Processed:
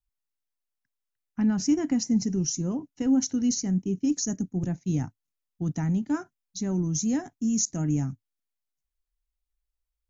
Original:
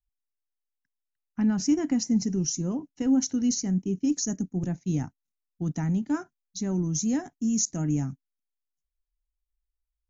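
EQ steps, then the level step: bell 110 Hz +5 dB 0.42 oct; 0.0 dB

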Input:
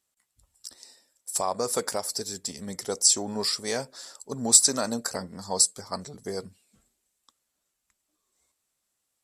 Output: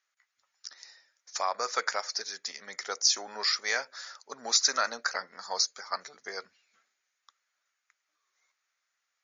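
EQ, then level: HPF 770 Hz 12 dB/oct; brick-wall FIR low-pass 7100 Hz; band shelf 1700 Hz +8.5 dB 1.1 oct; 0.0 dB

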